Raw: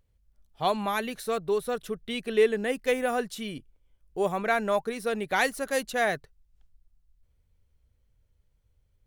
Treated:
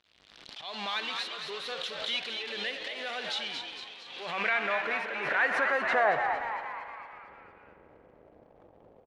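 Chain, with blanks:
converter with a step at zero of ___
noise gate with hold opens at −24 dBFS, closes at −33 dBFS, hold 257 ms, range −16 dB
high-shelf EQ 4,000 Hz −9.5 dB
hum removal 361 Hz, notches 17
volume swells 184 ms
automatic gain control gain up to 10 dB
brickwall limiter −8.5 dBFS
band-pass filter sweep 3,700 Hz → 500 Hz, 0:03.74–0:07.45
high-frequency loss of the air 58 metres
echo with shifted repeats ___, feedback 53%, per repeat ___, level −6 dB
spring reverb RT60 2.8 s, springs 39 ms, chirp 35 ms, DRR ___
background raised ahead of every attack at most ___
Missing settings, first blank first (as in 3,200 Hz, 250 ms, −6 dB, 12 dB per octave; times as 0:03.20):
−30.5 dBFS, 228 ms, +110 Hz, 9.5 dB, 51 dB per second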